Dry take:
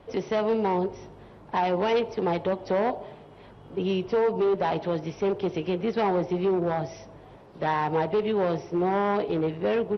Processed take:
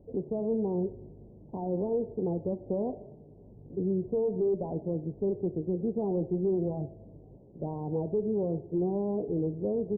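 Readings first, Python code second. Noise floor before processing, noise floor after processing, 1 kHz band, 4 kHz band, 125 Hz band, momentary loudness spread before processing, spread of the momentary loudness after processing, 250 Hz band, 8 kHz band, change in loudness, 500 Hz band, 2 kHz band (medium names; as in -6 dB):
-49 dBFS, -52 dBFS, -17.0 dB, under -40 dB, -1.0 dB, 7 LU, 9 LU, -2.0 dB, no reading, -5.0 dB, -5.0 dB, under -40 dB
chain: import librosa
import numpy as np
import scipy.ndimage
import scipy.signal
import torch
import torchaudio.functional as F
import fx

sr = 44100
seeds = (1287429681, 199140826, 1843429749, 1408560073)

y = fx.wiener(x, sr, points=25)
y = scipy.ndimage.gaussian_filter1d(y, 16.0, mode='constant')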